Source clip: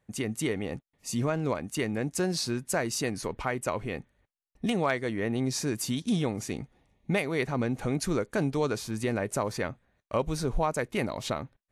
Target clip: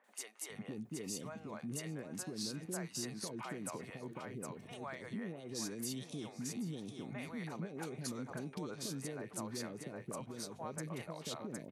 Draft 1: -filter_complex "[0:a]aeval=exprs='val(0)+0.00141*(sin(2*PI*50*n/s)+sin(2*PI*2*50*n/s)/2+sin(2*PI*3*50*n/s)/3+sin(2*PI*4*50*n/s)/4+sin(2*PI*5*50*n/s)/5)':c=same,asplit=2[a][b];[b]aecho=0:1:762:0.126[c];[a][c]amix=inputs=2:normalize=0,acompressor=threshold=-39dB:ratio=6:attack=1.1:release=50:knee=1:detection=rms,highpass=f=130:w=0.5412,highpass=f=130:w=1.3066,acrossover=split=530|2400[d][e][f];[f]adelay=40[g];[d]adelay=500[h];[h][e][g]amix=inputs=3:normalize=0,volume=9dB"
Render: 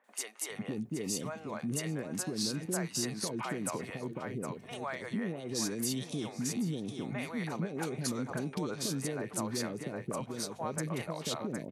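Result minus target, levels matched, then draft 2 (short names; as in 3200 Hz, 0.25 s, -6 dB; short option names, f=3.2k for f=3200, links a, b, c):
compressor: peak gain reduction -7.5 dB
-filter_complex "[0:a]aeval=exprs='val(0)+0.00141*(sin(2*PI*50*n/s)+sin(2*PI*2*50*n/s)/2+sin(2*PI*3*50*n/s)/3+sin(2*PI*4*50*n/s)/4+sin(2*PI*5*50*n/s)/5)':c=same,asplit=2[a][b];[b]aecho=0:1:762:0.126[c];[a][c]amix=inputs=2:normalize=0,acompressor=threshold=-48dB:ratio=6:attack=1.1:release=50:knee=1:detection=rms,highpass=f=130:w=0.5412,highpass=f=130:w=1.3066,acrossover=split=530|2400[d][e][f];[f]adelay=40[g];[d]adelay=500[h];[h][e][g]amix=inputs=3:normalize=0,volume=9dB"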